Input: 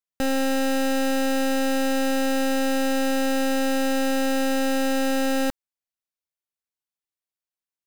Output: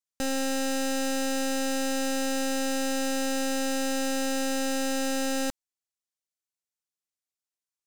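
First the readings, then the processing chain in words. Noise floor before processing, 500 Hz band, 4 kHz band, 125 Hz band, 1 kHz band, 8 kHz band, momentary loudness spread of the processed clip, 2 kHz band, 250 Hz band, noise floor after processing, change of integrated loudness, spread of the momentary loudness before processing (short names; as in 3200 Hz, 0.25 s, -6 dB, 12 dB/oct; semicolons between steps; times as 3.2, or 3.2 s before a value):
under -85 dBFS, -6.0 dB, -2.0 dB, n/a, -6.0 dB, +2.0 dB, 0 LU, -5.0 dB, -6.0 dB, under -85 dBFS, -5.0 dB, 0 LU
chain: bell 6900 Hz +9 dB 1.4 oct; gain -6 dB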